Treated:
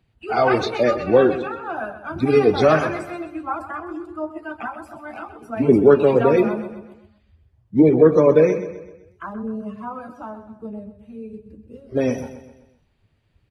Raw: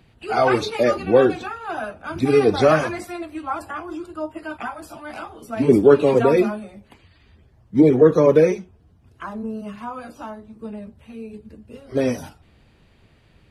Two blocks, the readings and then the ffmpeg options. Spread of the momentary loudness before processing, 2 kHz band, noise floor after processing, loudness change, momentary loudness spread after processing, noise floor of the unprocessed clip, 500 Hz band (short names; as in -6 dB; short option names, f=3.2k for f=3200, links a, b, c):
22 LU, 0.0 dB, -63 dBFS, +0.5 dB, 23 LU, -56 dBFS, +0.5 dB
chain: -filter_complex "[0:a]afftdn=nr=13:nf=-37,asplit=2[a][b];[b]aecho=0:1:128|256|384|512|640:0.251|0.116|0.0532|0.0244|0.0112[c];[a][c]amix=inputs=2:normalize=0"